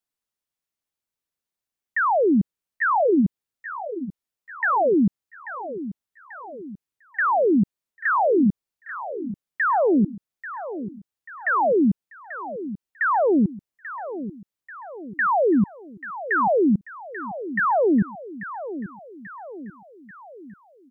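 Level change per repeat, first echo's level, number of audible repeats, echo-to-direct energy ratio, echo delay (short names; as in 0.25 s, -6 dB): -5.5 dB, -13.0 dB, 4, -11.5 dB, 0.838 s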